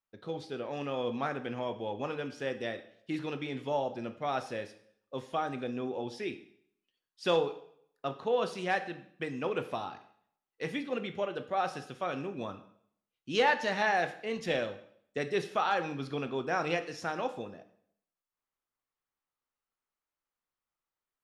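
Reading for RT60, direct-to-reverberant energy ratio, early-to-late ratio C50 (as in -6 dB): 0.65 s, 8.0 dB, 12.5 dB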